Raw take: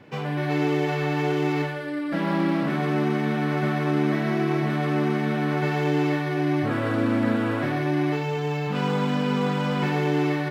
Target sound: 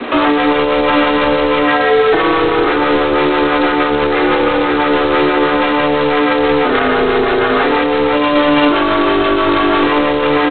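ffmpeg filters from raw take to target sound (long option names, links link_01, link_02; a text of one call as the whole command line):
ffmpeg -i in.wav -filter_complex "[0:a]equalizer=frequency=1100:width_type=o:width=0.53:gain=8.5,afreqshift=-34,aecho=1:1:502|1004|1506|2008:0.0841|0.0463|0.0255|0.014,aeval=exprs='val(0)+0.002*(sin(2*PI*60*n/s)+sin(2*PI*2*60*n/s)/2+sin(2*PI*3*60*n/s)/3+sin(2*PI*4*60*n/s)/4+sin(2*PI*5*60*n/s)/5)':channel_layout=same,afreqshift=180,acrossover=split=500[link_01][link_02];[link_01]aeval=exprs='val(0)*(1-0.5/2+0.5/2*cos(2*PI*6.1*n/s))':channel_layout=same[link_03];[link_02]aeval=exprs='val(0)*(1-0.5/2-0.5/2*cos(2*PI*6.1*n/s))':channel_layout=same[link_04];[link_03][link_04]amix=inputs=2:normalize=0,asettb=1/sr,asplit=3[link_05][link_06][link_07];[link_05]atrim=end=3.774[link_08];[link_06]atrim=start=3.77:end=5.77,asetpts=PTS-STARTPTS,afade=type=in:duration=0.004:curve=qsin,afade=type=out:start_time=1.996:duration=0.004:curve=qsin,lowshelf=frequency=120:gain=-4[link_09];[link_07]atrim=start=5.766[link_10];[link_08][link_09]acrossfade=duration=0.004:curve1=hsin:curve2=qsin[link_11];[link_11][link_10]acrossfade=duration=0.004:curve1=qsin:curve2=hsin,aeval=exprs='clip(val(0),-1,0.0501)':channel_layout=same,acompressor=threshold=-29dB:ratio=20,alimiter=level_in=30.5dB:limit=-1dB:release=50:level=0:latency=1,volume=-3.5dB" -ar 8000 -c:a adpcm_g726 -b:a 16k out.wav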